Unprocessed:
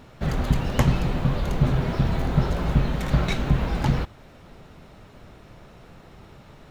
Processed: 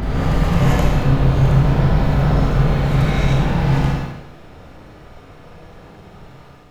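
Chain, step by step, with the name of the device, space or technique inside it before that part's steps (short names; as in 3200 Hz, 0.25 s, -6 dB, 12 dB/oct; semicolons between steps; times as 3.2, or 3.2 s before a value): reverse reverb (reverse; reverb RT60 2.4 s, pre-delay 67 ms, DRR -6.5 dB; reverse); notches 60/120/180/240 Hz; Schroeder reverb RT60 0.88 s, combs from 26 ms, DRR -0.5 dB; gain -4 dB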